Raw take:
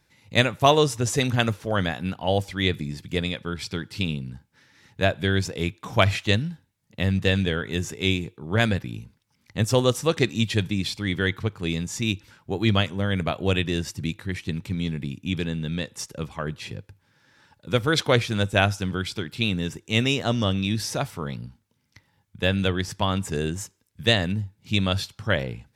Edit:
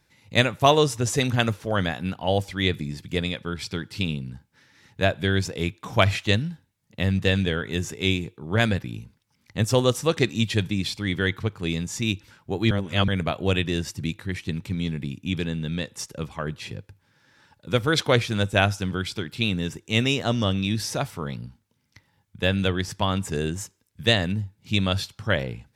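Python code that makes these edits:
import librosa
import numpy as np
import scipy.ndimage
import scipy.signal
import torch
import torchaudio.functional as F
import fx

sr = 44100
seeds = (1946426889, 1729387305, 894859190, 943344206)

y = fx.edit(x, sr, fx.reverse_span(start_s=12.71, length_s=0.37), tone=tone)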